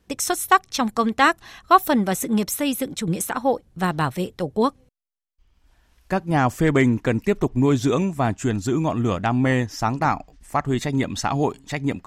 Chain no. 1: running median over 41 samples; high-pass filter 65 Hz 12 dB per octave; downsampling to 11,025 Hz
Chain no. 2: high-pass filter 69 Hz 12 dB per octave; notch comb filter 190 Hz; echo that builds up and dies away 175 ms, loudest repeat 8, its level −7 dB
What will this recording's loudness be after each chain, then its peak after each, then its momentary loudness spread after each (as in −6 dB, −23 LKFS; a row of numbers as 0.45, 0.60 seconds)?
−24.5, −18.5 LKFS; −8.5, −3.0 dBFS; 8, 4 LU